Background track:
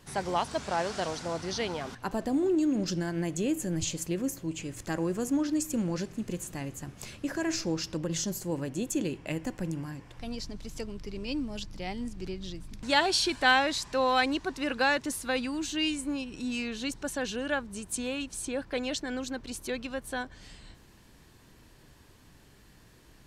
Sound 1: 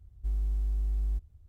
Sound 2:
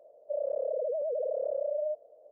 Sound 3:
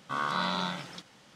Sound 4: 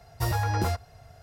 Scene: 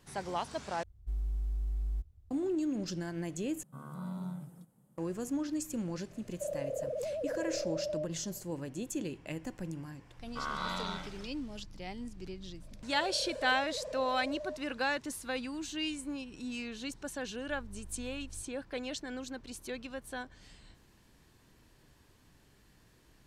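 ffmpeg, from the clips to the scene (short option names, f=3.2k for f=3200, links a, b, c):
-filter_complex "[1:a]asplit=2[a][b];[3:a]asplit=2[c][d];[2:a]asplit=2[e][f];[0:a]volume=-6.5dB[g];[c]firequalizer=gain_entry='entry(100,0);entry(150,10);entry(280,-3);entry(2100,-25);entry(3000,-25);entry(5600,-24);entry(8200,-3);entry(12000,8)':delay=0.05:min_phase=1[h];[b]aeval=exprs='max(val(0),0)':c=same[i];[g]asplit=3[j][k][l];[j]atrim=end=0.834[m];[a]atrim=end=1.48,asetpts=PTS-STARTPTS,volume=-4.5dB[n];[k]atrim=start=2.306:end=3.634[o];[h]atrim=end=1.35,asetpts=PTS-STARTPTS,volume=-8dB[p];[l]atrim=start=4.976[q];[e]atrim=end=2.31,asetpts=PTS-STARTPTS,volume=-5dB,afade=t=in:d=0.004:c=hsin,afade=t=out:st=2.306:d=0.004:c=hsin,adelay=6110[r];[d]atrim=end=1.35,asetpts=PTS-STARTPTS,volume=-6.5dB,afade=t=in:d=0.004:c=hsin,afade=t=out:st=1.346:d=0.004:c=hsin,adelay=452466S[s];[f]atrim=end=2.31,asetpts=PTS-STARTPTS,volume=-10.5dB,afade=t=in:d=0.004:c=hsin,afade=t=out:st=2.306:d=0.004:c=hsin,adelay=12620[t];[i]atrim=end=1.48,asetpts=PTS-STARTPTS,volume=-15.5dB,afade=t=in:d=0.004:c=hsin,afade=t=out:st=1.476:d=0.004:c=hsin,adelay=17240[u];[m][n]acrossfade=d=0.004:c1=hsin:c2=hsin[v];[v][o]acrossfade=d=0.004:c1=hsin:c2=hsin[w];[w][p]acrossfade=d=0.004:c1=hsin:c2=hsin[x];[x][q]acrossfade=d=0.004:c1=hsin:c2=hsin[y];[y][r][s][t][u]amix=inputs=5:normalize=0"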